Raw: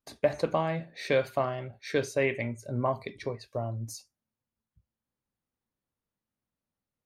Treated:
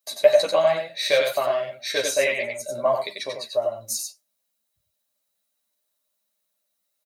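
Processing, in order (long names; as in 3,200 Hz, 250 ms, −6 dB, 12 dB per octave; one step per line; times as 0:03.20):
spectral tilt +4.5 dB per octave
hollow resonant body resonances 610/3,900 Hz, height 17 dB, ringing for 55 ms
on a send: single-tap delay 92 ms −4.5 dB
on the sum: string-ensemble chorus
level +5 dB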